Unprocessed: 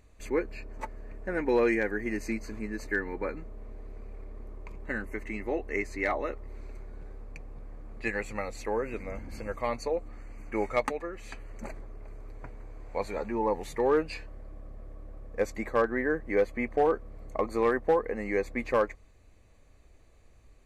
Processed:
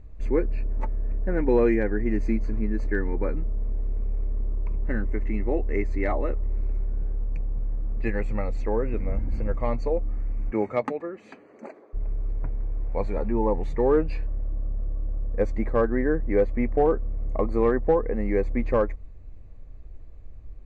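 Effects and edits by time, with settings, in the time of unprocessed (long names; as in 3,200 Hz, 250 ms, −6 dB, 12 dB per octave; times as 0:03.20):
0:10.50–0:11.93: high-pass filter 99 Hz → 370 Hz 24 dB per octave
whole clip: Bessel low-pass filter 6,600 Hz; spectral tilt −3.5 dB per octave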